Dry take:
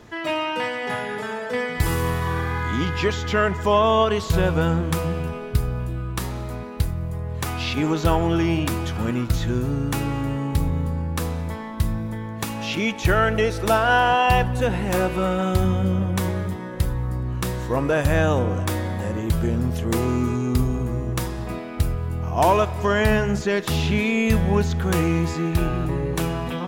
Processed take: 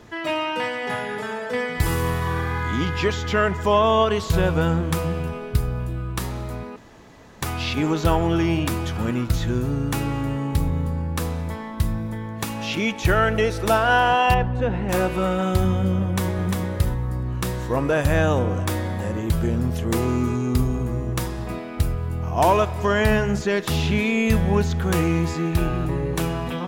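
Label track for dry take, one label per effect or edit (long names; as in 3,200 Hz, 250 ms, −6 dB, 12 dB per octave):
6.760000	7.420000	fill with room tone
14.340000	14.890000	head-to-tape spacing loss at 10 kHz 24 dB
16.030000	16.590000	delay throw 350 ms, feedback 10%, level −3 dB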